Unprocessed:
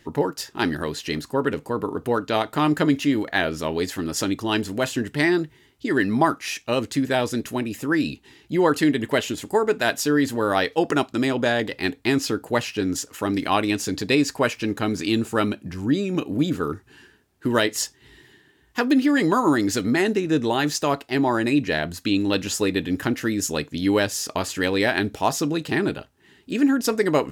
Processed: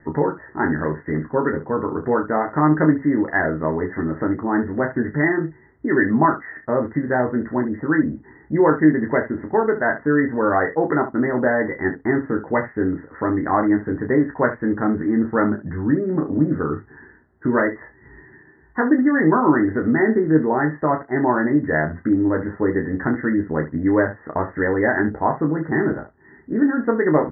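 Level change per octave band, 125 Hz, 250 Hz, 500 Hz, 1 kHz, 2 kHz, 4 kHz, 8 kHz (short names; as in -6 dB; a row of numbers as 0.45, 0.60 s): +3.5 dB, +3.5 dB, +3.0 dB, +3.0 dB, +2.0 dB, under -40 dB, under -40 dB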